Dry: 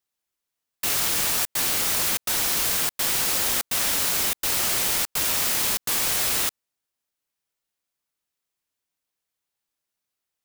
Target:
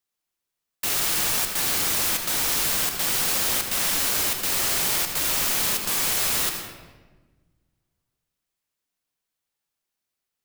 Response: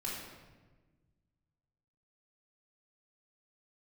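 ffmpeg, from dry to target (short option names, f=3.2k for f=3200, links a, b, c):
-filter_complex "[0:a]asplit=2[a][b];[1:a]atrim=start_sample=2205,adelay=77[c];[b][c]afir=irnorm=-1:irlink=0,volume=-6dB[d];[a][d]amix=inputs=2:normalize=0,volume=-1dB"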